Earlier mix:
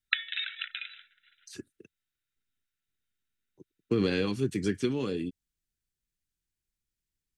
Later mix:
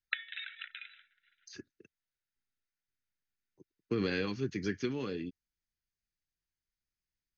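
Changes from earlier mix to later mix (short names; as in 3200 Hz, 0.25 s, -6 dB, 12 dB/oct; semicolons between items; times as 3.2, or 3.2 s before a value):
background -5.0 dB; master: add rippled Chebyshev low-pass 6600 Hz, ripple 6 dB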